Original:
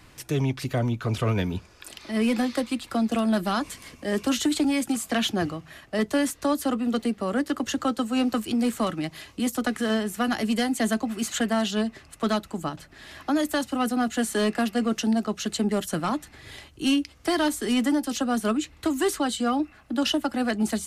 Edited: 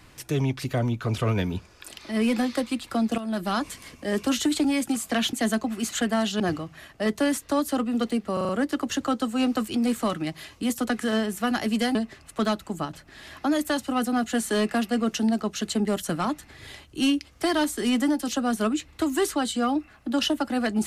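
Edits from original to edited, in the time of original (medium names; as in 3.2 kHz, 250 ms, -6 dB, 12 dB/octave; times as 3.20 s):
3.18–3.55 s: fade in, from -12.5 dB
7.26 s: stutter 0.04 s, 5 plays
10.72–11.79 s: move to 5.33 s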